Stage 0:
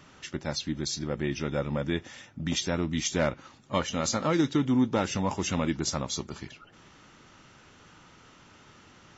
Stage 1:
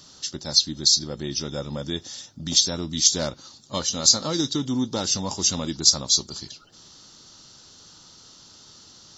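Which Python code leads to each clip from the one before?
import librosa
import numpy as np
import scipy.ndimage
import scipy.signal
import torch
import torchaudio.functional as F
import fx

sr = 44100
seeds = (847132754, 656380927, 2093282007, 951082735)

y = fx.high_shelf_res(x, sr, hz=3200.0, db=11.5, q=3.0)
y = y * librosa.db_to_amplitude(-1.0)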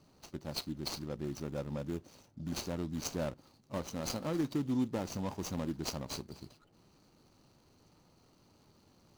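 y = scipy.ndimage.median_filter(x, 25, mode='constant')
y = y * librosa.db_to_amplitude(-7.0)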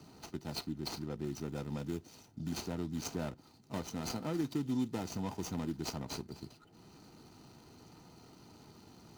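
y = fx.notch_comb(x, sr, f0_hz=560.0)
y = fx.band_squash(y, sr, depth_pct=40)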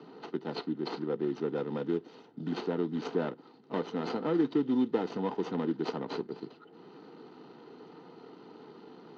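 y = fx.cabinet(x, sr, low_hz=190.0, low_slope=24, high_hz=3300.0, hz=(210.0, 450.0, 630.0, 2400.0), db=(-4, 9, -5, -8))
y = y * librosa.db_to_amplitude(7.5)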